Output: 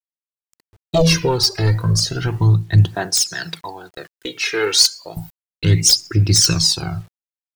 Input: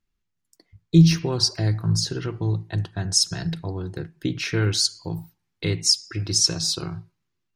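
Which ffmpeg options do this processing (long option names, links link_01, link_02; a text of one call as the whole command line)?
ffmpeg -i in.wav -filter_complex "[0:a]asettb=1/sr,asplit=3[link_01][link_02][link_03];[link_01]atrim=end=2.954[link_04];[link_02]atrim=start=2.95:end=5.17,asetpts=PTS-STARTPTS,afade=type=in:duration=0.004:curve=qsin,afade=type=out:start_time=2.216:duration=0.004:curve=qsin,highpass=510[link_05];[link_03]atrim=start=5.166[link_06];[link_04][link_05]acrossfade=duration=0.004:curve1=hsin:curve2=qsin[link_07];[link_07][link_06]acrossfade=duration=0.004:curve1=qsin:curve2=hsin,agate=range=-15dB:threshold=-42dB:ratio=16:detection=peak,aeval=exprs='0.596*sin(PI/2*2.51*val(0)/0.596)':channel_layout=same,aphaser=in_gain=1:out_gain=1:delay=2.5:decay=0.66:speed=0.33:type=triangular,acrusher=bits=7:mix=0:aa=0.000001,tremolo=f=1.7:d=0.37,volume=-3dB" out.wav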